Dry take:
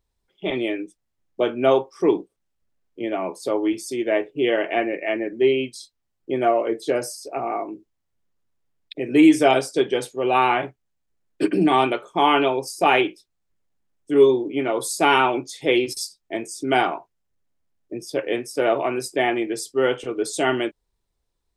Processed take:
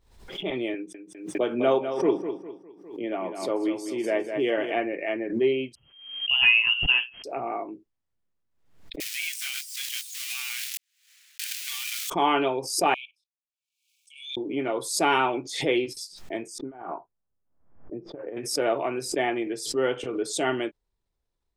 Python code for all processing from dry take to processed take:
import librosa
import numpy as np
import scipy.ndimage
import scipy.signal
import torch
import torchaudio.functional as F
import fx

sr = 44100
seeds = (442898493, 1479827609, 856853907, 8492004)

y = fx.chain(x, sr, fx.highpass(hz=120.0, slope=24),
    fx.echo_feedback(ms=203, feedback_pct=37, wet_db=-9), at=(0.74, 4.72))
y = fx.chain(y, sr, fx.freq_invert(carrier_hz=3200),
    fx.high_shelf(hz=2300.0, db=10.0), at=(5.75, 7.24))
y = fx.chain(y, sr, fx.crossing_spikes(level_db=-10.5),
    fx.cheby2_highpass(hz=470.0, order=4, stop_db=70),
    fx.over_compress(threshold_db=-25.0, ratio=-1.0), at=(9.0, 12.1))
y = fx.chain(y, sr, fx.brickwall_highpass(low_hz=2200.0),
    fx.level_steps(step_db=17), at=(12.94, 14.37))
y = fx.chain(y, sr, fx.ladder_lowpass(hz=1600.0, resonance_pct=20),
    fx.over_compress(threshold_db=-31.0, ratio=-0.5), at=(16.58, 18.37))
y = fx.high_shelf(y, sr, hz=6400.0, db=-7.5)
y = fx.pre_swell(y, sr, db_per_s=84.0)
y = y * 10.0 ** (-5.0 / 20.0)